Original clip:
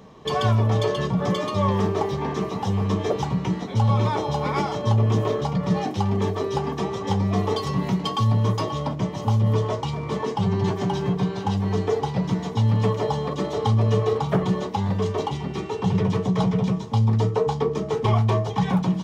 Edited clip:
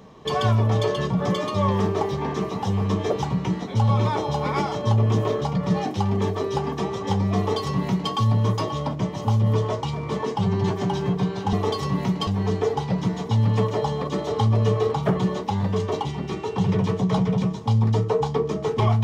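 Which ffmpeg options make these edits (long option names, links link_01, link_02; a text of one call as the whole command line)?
ffmpeg -i in.wav -filter_complex "[0:a]asplit=3[link_01][link_02][link_03];[link_01]atrim=end=11.532[link_04];[link_02]atrim=start=7.368:end=8.112[link_05];[link_03]atrim=start=11.528[link_06];[link_04][link_05]acrossfade=duration=0.004:curve1=hsin:curve2=hsin[link_07];[link_07][link_06]acrossfade=duration=0.004:curve1=hsin:curve2=hsin" out.wav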